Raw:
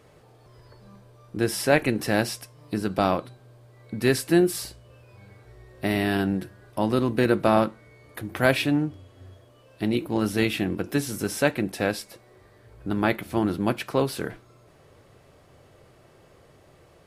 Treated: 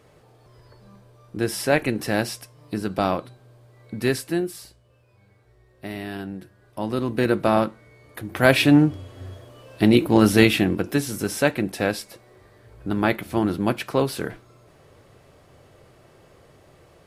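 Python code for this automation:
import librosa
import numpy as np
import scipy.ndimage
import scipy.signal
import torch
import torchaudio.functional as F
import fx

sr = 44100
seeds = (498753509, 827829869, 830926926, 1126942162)

y = fx.gain(x, sr, db=fx.line((4.04, 0.0), (4.58, -8.5), (6.34, -8.5), (7.25, 0.5), (8.24, 0.5), (8.77, 9.0), (10.34, 9.0), (11.02, 2.0)))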